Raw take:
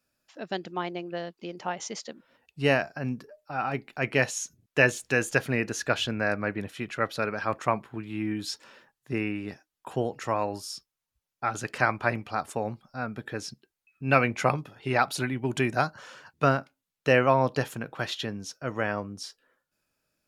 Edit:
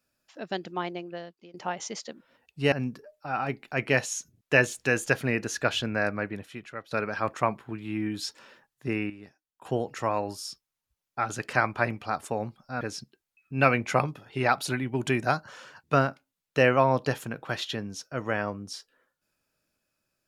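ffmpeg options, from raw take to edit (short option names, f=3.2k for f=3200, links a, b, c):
-filter_complex "[0:a]asplit=7[a][b][c][d][e][f][g];[a]atrim=end=1.54,asetpts=PTS-STARTPTS,afade=t=out:st=0.87:d=0.67:silence=0.133352[h];[b]atrim=start=1.54:end=2.722,asetpts=PTS-STARTPTS,afade=t=in:d=0.004:c=hsin:silence=0.133352[i];[c]atrim=start=2.968:end=7.16,asetpts=PTS-STARTPTS,afade=t=out:st=3.342:d=0.85:silence=0.141254[j];[d]atrim=start=7.16:end=9.352,asetpts=PTS-STARTPTS,afade=t=in:d=0.004:c=hsin:silence=0.141254[k];[e]atrim=start=9.348:end=9.902,asetpts=PTS-STARTPTS,volume=-10.5dB[l];[f]atrim=start=9.898:end=13.062[m];[g]atrim=start=13.308[n];[h][i]concat=n=2:v=0:a=1[o];[j][k]concat=n=2:v=0:a=1[p];[o][p]acrossfade=d=0.004:c1=hsin:c2=hsin[q];[q][l]acrossfade=d=0.004:c1=hsin:c2=hsin[r];[r][m]acrossfade=d=0.004:c1=hsin:c2=hsin[s];[s][n]acrossfade=d=0.004:c1=hsin:c2=hsin"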